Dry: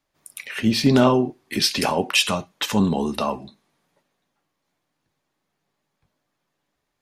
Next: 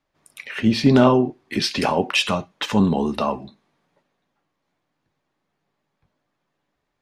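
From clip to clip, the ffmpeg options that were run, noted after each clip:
-af "aemphasis=mode=reproduction:type=50fm,volume=1.5dB"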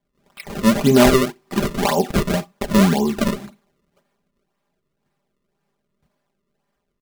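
-af "acrusher=samples=32:mix=1:aa=0.000001:lfo=1:lforange=51.2:lforate=1.9,aecho=1:1:5:0.65"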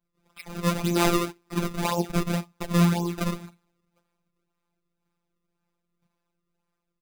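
-af "afftfilt=real='hypot(re,im)*cos(PI*b)':imag='0':win_size=1024:overlap=0.75,volume=-3.5dB"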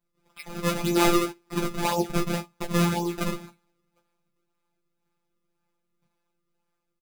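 -filter_complex "[0:a]asplit=2[a][b];[b]adelay=14,volume=-5dB[c];[a][c]amix=inputs=2:normalize=0"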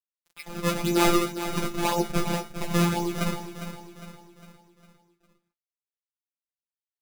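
-filter_complex "[0:a]acrusher=bits=7:mix=0:aa=0.5,asplit=2[a][b];[b]aecho=0:1:405|810|1215|1620|2025:0.299|0.137|0.0632|0.0291|0.0134[c];[a][c]amix=inputs=2:normalize=0"

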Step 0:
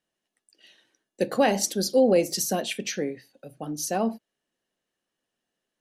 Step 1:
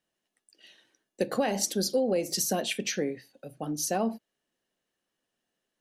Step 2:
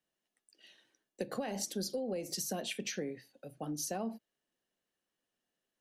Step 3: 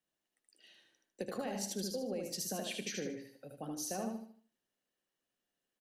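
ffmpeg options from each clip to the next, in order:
-af "acompressor=threshold=-23dB:ratio=6"
-filter_complex "[0:a]acrossover=split=160[a][b];[b]acompressor=threshold=-30dB:ratio=4[c];[a][c]amix=inputs=2:normalize=0,volume=-5dB"
-af "aecho=1:1:76|152|228|304|380:0.631|0.227|0.0818|0.0294|0.0106,volume=-3dB"

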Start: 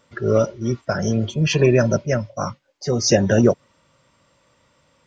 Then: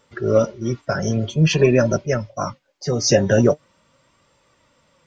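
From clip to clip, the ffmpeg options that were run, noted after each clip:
-af "flanger=delay=2.3:depth=5.2:regen=57:speed=0.46:shape=sinusoidal,volume=4.5dB"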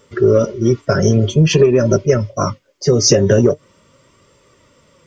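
-filter_complex "[0:a]equalizer=f=100:t=o:w=0.33:g=4,equalizer=f=400:t=o:w=0.33:g=8,equalizer=f=800:t=o:w=0.33:g=-12,equalizer=f=1.6k:t=o:w=0.33:g=-5,equalizer=f=2.5k:t=o:w=0.33:g=-3,equalizer=f=4k:t=o:w=0.33:g=-5,asplit=2[a][b];[b]asoftclip=type=tanh:threshold=-6.5dB,volume=-4.5dB[c];[a][c]amix=inputs=2:normalize=0,acompressor=threshold=-12dB:ratio=12,volume=4.5dB"

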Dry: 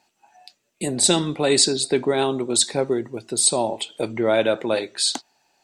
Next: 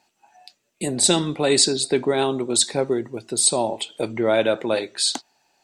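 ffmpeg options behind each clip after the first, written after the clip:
-af anull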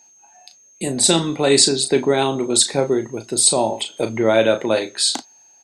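-filter_complex "[0:a]asplit=2[a][b];[b]adelay=36,volume=-9dB[c];[a][c]amix=inputs=2:normalize=0,aeval=exprs='val(0)+0.00316*sin(2*PI*6400*n/s)':c=same,dynaudnorm=f=460:g=5:m=5dB,volume=1dB"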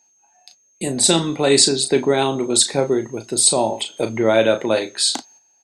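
-af "agate=range=-8dB:threshold=-46dB:ratio=16:detection=peak"

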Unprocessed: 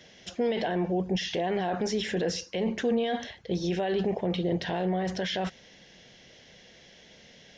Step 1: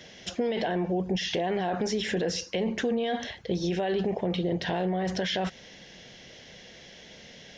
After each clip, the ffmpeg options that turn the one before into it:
-af "acompressor=threshold=-32dB:ratio=2.5,volume=5dB"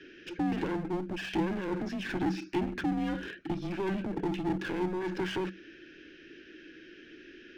-filter_complex "[0:a]asplit=3[a][b][c];[a]bandpass=f=530:t=q:w=8,volume=0dB[d];[b]bandpass=f=1.84k:t=q:w=8,volume=-6dB[e];[c]bandpass=f=2.48k:t=q:w=8,volume=-9dB[f];[d][e][f]amix=inputs=3:normalize=0,aeval=exprs='clip(val(0),-1,0.00447)':c=same,afreqshift=-190,volume=8.5dB"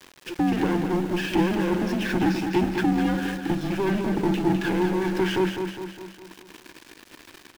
-filter_complex "[0:a]aeval=exprs='val(0)*gte(abs(val(0)),0.00562)':c=same,asplit=2[a][b];[b]aecho=0:1:205|410|615|820|1025|1230:0.447|0.237|0.125|0.0665|0.0352|0.0187[c];[a][c]amix=inputs=2:normalize=0,volume=7.5dB"

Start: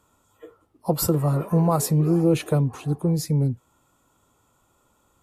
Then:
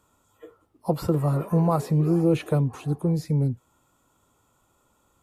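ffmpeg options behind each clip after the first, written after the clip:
-filter_complex "[0:a]acrossover=split=3600[a][b];[b]acompressor=threshold=-44dB:ratio=4:attack=1:release=60[c];[a][c]amix=inputs=2:normalize=0,volume=-1.5dB"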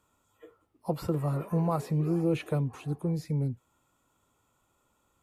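-af "equalizer=f=2.3k:t=o:w=1:g=4,volume=-6.5dB"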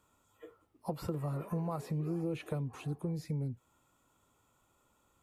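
-af "acompressor=threshold=-35dB:ratio=3"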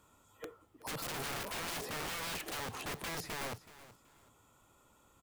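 -af "aeval=exprs='(mod(106*val(0)+1,2)-1)/106':c=same,aecho=1:1:376|752:0.141|0.0353,volume=5.5dB"

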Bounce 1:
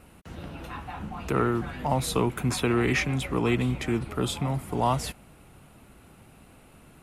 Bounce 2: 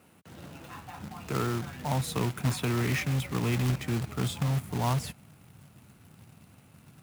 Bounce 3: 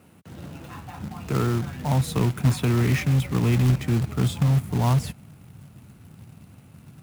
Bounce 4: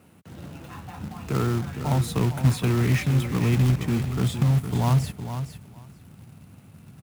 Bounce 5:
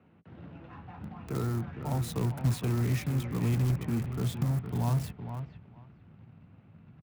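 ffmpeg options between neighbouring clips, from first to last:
-af "asubboost=boost=4.5:cutoff=170,highpass=f=100:w=0.5412,highpass=f=100:w=1.3066,acrusher=bits=2:mode=log:mix=0:aa=0.000001,volume=-6dB"
-af "lowshelf=f=330:g=7.5,volume=2dB"
-af "aecho=1:1:461|922:0.335|0.0502,volume=-1dB"
-filter_complex "[0:a]acrossover=split=100|870|3100[a][b][c][d];[b]asplit=2[e][f];[f]adelay=18,volume=-9dB[g];[e][g]amix=inputs=2:normalize=0[h];[c]asoftclip=type=tanh:threshold=-36dB[i];[d]acrusher=bits=5:mix=0:aa=0.000001[j];[a][h][i][j]amix=inputs=4:normalize=0,volume=-7dB"

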